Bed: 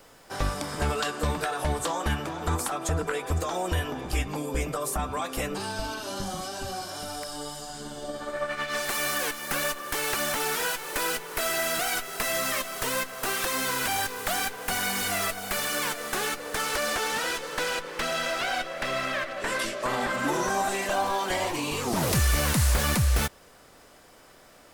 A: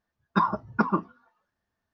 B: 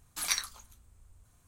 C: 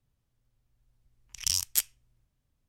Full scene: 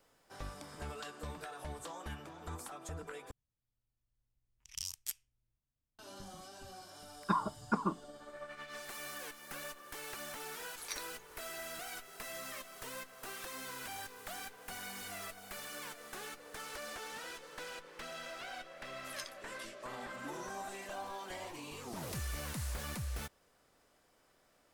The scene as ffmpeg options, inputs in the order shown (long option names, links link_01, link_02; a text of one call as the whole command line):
ffmpeg -i bed.wav -i cue0.wav -i cue1.wav -i cue2.wav -filter_complex "[2:a]asplit=2[link_01][link_02];[0:a]volume=-17dB[link_03];[link_02]aeval=exprs='val(0)*sin(2*PI*500*n/s+500*0.25/2.7*sin(2*PI*2.7*n/s))':channel_layout=same[link_04];[link_03]asplit=2[link_05][link_06];[link_05]atrim=end=3.314[link_07];[3:a]atrim=end=2.68,asetpts=PTS-STARTPTS,volume=-14dB[link_08];[link_06]atrim=start=5.986[link_09];[1:a]atrim=end=1.93,asetpts=PTS-STARTPTS,volume=-9dB,afade=type=in:duration=0.004:curve=hsin,afade=type=out:start_time=1.926:duration=0.004:curve=hsin,adelay=6930[link_10];[link_01]atrim=end=1.47,asetpts=PTS-STARTPTS,volume=-13dB,afade=type=in:duration=0.004:curve=hsin,afade=type=out:start_time=1.466:duration=0.004:curve=hsin,adelay=10600[link_11];[link_04]atrim=end=1.47,asetpts=PTS-STARTPTS,volume=-13.5dB,afade=type=in:duration=0.004:curve=hsin,afade=type=out:start_time=1.466:duration=0.004:curve=hsin,adelay=18880[link_12];[link_07][link_08]acrossfade=duration=0.004:curve1=hsin:curve2=hsin[link_13];[link_13][link_09]acrossfade=duration=0.004:curve1=hsin:curve2=hsin[link_14];[link_14][link_10][link_11][link_12]amix=inputs=4:normalize=0" out.wav